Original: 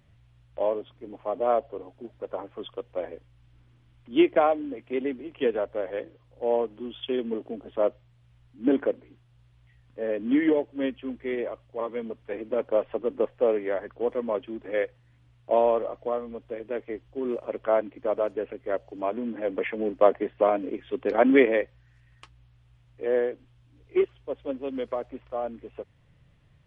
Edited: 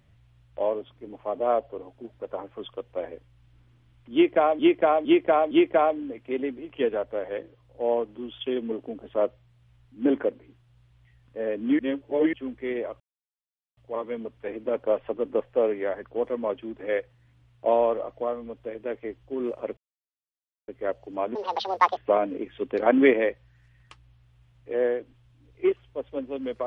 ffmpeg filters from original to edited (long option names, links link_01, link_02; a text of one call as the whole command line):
ffmpeg -i in.wav -filter_complex "[0:a]asplit=11[link_01][link_02][link_03][link_04][link_05][link_06][link_07][link_08][link_09][link_10][link_11];[link_01]atrim=end=4.592[link_12];[link_02]atrim=start=4.128:end=4.592[link_13];[link_03]atrim=start=4.128:end=4.592[link_14];[link_04]atrim=start=4.128:end=10.412[link_15];[link_05]atrim=start=10.408:end=10.952,asetpts=PTS-STARTPTS,areverse[link_16];[link_06]atrim=start=10.948:end=11.62,asetpts=PTS-STARTPTS,afade=type=out:start_time=0.668:duration=0.004:curve=hsin,apad=pad_dur=0.77[link_17];[link_07]atrim=start=11.62:end=17.62,asetpts=PTS-STARTPTS,afade=type=in:duration=0.004:curve=hsin,afade=type=out:start_time=5.996:duration=0.004:curve=hsin[link_18];[link_08]atrim=start=17.62:end=18.53,asetpts=PTS-STARTPTS,volume=0[link_19];[link_09]atrim=start=18.53:end=19.204,asetpts=PTS-STARTPTS,afade=type=in:duration=0.004:curve=hsin[link_20];[link_10]atrim=start=19.2:end=20.29,asetpts=PTS-STARTPTS,asetrate=77616,aresample=44100[link_21];[link_11]atrim=start=20.286[link_22];[link_12][link_13]acrossfade=duration=0.004:curve1=hsin:curve2=hsin[link_23];[link_23][link_14]acrossfade=duration=0.004:curve1=hsin:curve2=hsin[link_24];[link_24][link_15]acrossfade=duration=0.004:curve1=hsin:curve2=hsin[link_25];[link_25][link_16]acrossfade=duration=0.004:curve1=hsin:curve2=hsin[link_26];[link_17][link_18][link_19][link_20]concat=n=4:v=0:a=1[link_27];[link_26][link_27]acrossfade=duration=0.004:curve1=hsin:curve2=hsin[link_28];[link_28][link_21]acrossfade=duration=0.004:curve1=hsin:curve2=hsin[link_29];[link_29][link_22]acrossfade=duration=0.004:curve1=hsin:curve2=hsin" out.wav